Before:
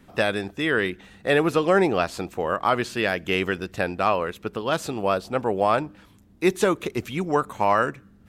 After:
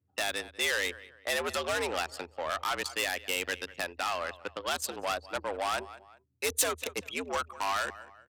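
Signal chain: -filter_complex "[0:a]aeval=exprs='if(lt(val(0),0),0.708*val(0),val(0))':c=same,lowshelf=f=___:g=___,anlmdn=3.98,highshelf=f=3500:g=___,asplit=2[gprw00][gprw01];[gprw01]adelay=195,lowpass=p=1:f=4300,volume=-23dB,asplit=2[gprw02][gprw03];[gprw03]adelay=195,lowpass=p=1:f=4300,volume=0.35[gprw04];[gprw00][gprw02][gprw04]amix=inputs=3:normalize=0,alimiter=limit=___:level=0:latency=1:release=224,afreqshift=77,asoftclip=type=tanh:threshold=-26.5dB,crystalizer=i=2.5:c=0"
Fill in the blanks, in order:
490, -11.5, 3.5, -16dB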